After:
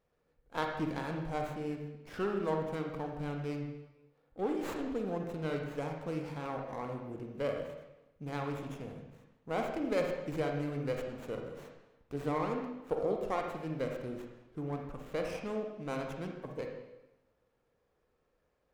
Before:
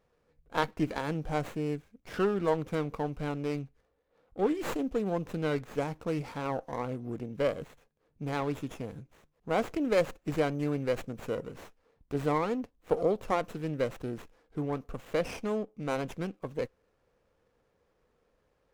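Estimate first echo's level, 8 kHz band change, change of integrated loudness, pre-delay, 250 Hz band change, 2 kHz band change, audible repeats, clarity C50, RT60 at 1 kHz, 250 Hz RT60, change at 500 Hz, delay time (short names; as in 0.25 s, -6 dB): none, -6.5 dB, -4.5 dB, 29 ms, -4.5 dB, -4.5 dB, none, 3.0 dB, 0.95 s, 1.1 s, -4.5 dB, none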